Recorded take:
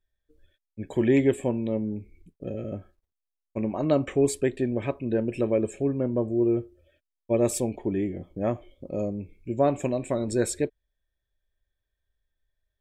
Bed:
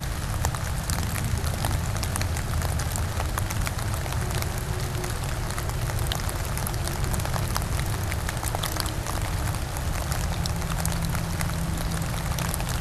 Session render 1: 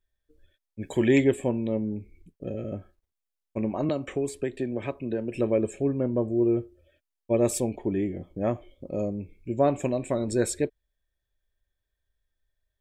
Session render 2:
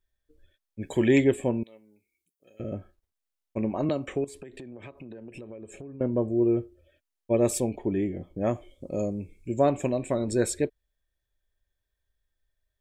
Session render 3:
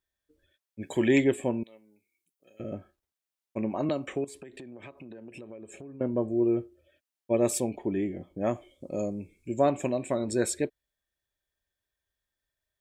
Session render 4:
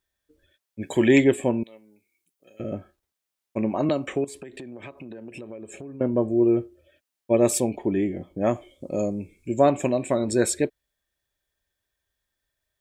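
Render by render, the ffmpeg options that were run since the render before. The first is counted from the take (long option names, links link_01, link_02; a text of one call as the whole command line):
ffmpeg -i in.wav -filter_complex "[0:a]asplit=3[link_01][link_02][link_03];[link_01]afade=type=out:start_time=0.81:duration=0.02[link_04];[link_02]highshelf=frequency=2300:gain=9.5,afade=type=in:start_time=0.81:duration=0.02,afade=type=out:start_time=1.23:duration=0.02[link_05];[link_03]afade=type=in:start_time=1.23:duration=0.02[link_06];[link_04][link_05][link_06]amix=inputs=3:normalize=0,asettb=1/sr,asplit=3[link_07][link_08][link_09];[link_07]atrim=end=3.894[link_10];[link_08]atrim=start=3.89:end=5.35,asetpts=PTS-STARTPTS,afade=type=in:duration=0.004:curve=qsin,afade=type=out:start_time=1.456:duration=0.004:curve=qsin,acrossover=split=240|3500[link_11][link_12][link_13];[link_11]acompressor=threshold=-37dB:ratio=4[link_14];[link_12]acompressor=threshold=-27dB:ratio=4[link_15];[link_13]acompressor=threshold=-42dB:ratio=4[link_16];[link_14][link_15][link_16]amix=inputs=3:normalize=0[link_17];[link_09]atrim=start=5.346[link_18];[link_10][link_17]acrossfade=duration=0.004:curve1=hsin:curve2=qsin[link_19];[link_19][link_18]acrossfade=duration=0.004:curve1=qsin:curve2=hsin" out.wav
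ffmpeg -i in.wav -filter_complex "[0:a]asettb=1/sr,asplit=3[link_01][link_02][link_03];[link_01]atrim=end=1.634[link_04];[link_02]atrim=start=1.63:end=2.6,asetpts=PTS-STARTPTS,afade=type=in:duration=0.004:curve=qsin,afade=type=out:start_time=0.966:duration=0.004:curve=qsin,aderivative[link_05];[link_03]atrim=start=2.596[link_06];[link_04][link_05]acrossfade=duration=0.004:curve1=hsin:curve2=qsin[link_07];[link_07][link_06]acrossfade=duration=0.004:curve1=qsin:curve2=hsin,asettb=1/sr,asplit=3[link_08][link_09][link_10];[link_08]atrim=end=4.244[link_11];[link_09]atrim=start=4.24:end=6.01,asetpts=PTS-STARTPTS,afade=type=in:duration=0.004:curve=qsin,afade=type=out:start_time=1.766:duration=0.004:curve=qsin,acompressor=threshold=-38dB:ratio=16:attack=3.2:release=140:knee=1:detection=peak[link_12];[link_10]atrim=start=6.006[link_13];[link_11][link_12]acrossfade=duration=0.004:curve1=hsin:curve2=qsin[link_14];[link_14][link_13]acrossfade=duration=0.004:curve1=qsin:curve2=hsin,asettb=1/sr,asplit=3[link_15][link_16][link_17];[link_15]atrim=end=8.464[link_18];[link_16]atrim=start=8.46:end=9.7,asetpts=PTS-STARTPTS,afade=type=in:duration=0.004:curve=qsin,afade=type=out:start_time=1.236:duration=0.004:curve=qsin,equalizer=frequency=8100:width_type=o:width=1.1:gain=12.5[link_19];[link_17]atrim=start=9.696[link_20];[link_18][link_19]acrossfade=duration=0.004:curve1=hsin:curve2=qsin[link_21];[link_21][link_20]acrossfade=duration=0.004:curve1=qsin:curve2=hsin" out.wav
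ffmpeg -i in.wav -af "highpass=frequency=180:poles=1,equalizer=frequency=460:width_type=o:width=0.41:gain=-3" out.wav
ffmpeg -i in.wav -af "volume=5.5dB" out.wav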